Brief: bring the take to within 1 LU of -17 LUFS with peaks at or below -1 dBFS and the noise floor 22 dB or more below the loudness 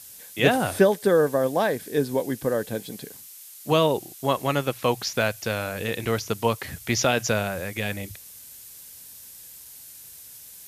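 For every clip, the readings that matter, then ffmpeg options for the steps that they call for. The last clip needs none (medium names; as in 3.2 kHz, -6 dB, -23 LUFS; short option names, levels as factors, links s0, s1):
noise floor -45 dBFS; noise floor target -47 dBFS; loudness -24.5 LUFS; peak level -4.5 dBFS; loudness target -17.0 LUFS
-> -af "afftdn=nr=6:nf=-45"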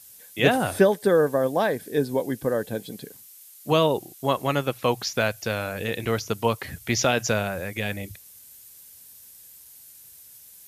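noise floor -49 dBFS; loudness -24.5 LUFS; peak level -4.5 dBFS; loudness target -17.0 LUFS
-> -af "volume=2.37,alimiter=limit=0.891:level=0:latency=1"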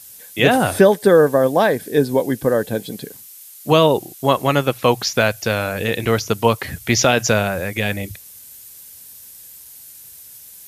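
loudness -17.5 LUFS; peak level -1.0 dBFS; noise floor -41 dBFS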